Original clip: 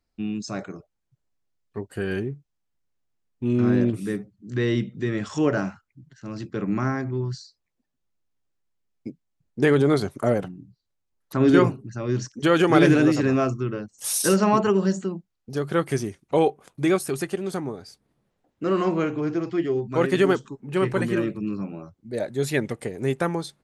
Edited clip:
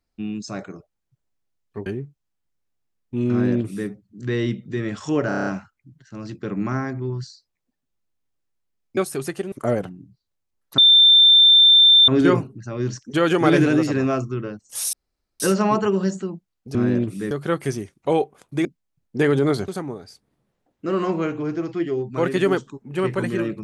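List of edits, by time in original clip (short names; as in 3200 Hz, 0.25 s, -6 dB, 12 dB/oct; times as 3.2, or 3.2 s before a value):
1.86–2.15 cut
3.61–4.17 copy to 15.57
5.57 stutter 0.03 s, 7 plays
9.08–10.11 swap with 16.91–17.46
11.37 add tone 3570 Hz -8.5 dBFS 1.30 s
14.22 insert room tone 0.47 s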